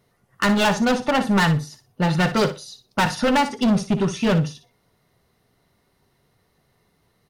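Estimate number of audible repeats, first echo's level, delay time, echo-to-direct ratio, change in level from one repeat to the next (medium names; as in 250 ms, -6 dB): 2, -11.5 dB, 60 ms, -11.5 dB, -14.0 dB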